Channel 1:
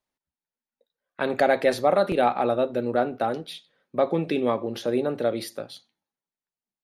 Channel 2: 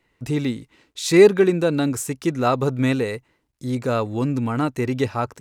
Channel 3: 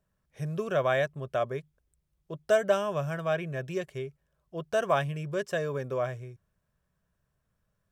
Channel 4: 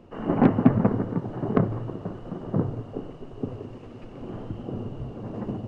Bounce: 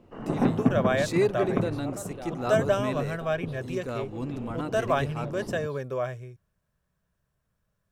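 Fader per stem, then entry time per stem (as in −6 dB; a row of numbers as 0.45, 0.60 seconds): −20.0, −12.0, +0.5, −5.0 decibels; 0.00, 0.00, 0.00, 0.00 seconds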